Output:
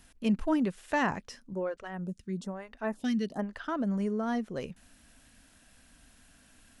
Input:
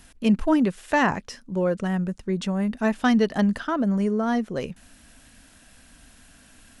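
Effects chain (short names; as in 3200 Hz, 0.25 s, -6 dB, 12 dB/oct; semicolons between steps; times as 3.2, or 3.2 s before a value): 1.53–3.64 photocell phaser 1.1 Hz; gain -7.5 dB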